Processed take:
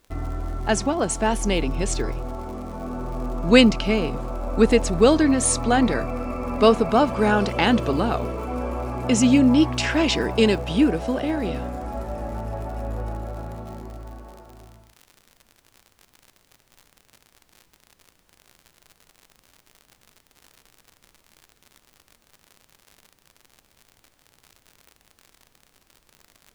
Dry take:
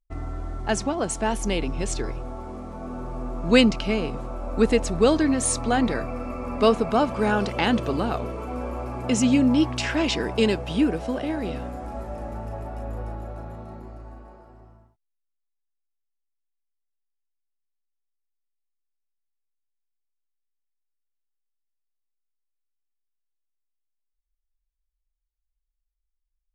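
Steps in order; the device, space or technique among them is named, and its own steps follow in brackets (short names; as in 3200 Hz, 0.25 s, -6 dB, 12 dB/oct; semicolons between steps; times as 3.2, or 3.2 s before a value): vinyl LP (crackle 78/s -38 dBFS; pink noise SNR 40 dB); gain +3 dB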